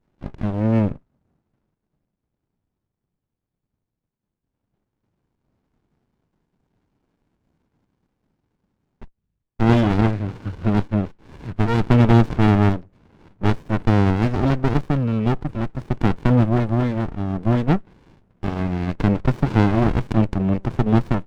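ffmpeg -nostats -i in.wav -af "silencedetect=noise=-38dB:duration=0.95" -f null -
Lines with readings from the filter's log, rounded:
silence_start: 0.96
silence_end: 9.02 | silence_duration: 8.05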